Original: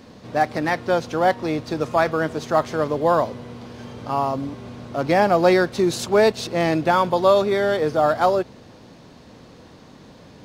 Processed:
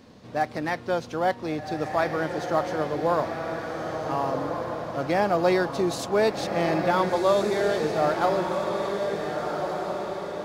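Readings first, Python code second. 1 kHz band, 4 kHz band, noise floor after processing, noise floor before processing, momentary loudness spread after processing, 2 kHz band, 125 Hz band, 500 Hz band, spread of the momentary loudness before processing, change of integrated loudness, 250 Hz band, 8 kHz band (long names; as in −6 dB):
−4.5 dB, −4.5 dB, −42 dBFS, −46 dBFS, 9 LU, −4.5 dB, −4.5 dB, −4.5 dB, 13 LU, −5.5 dB, −4.5 dB, −4.5 dB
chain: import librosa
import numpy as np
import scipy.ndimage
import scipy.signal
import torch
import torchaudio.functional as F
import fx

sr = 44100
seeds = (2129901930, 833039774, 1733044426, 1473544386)

y = fx.echo_diffused(x, sr, ms=1494, feedback_pct=50, wet_db=-4.5)
y = y * librosa.db_to_amplitude(-6.0)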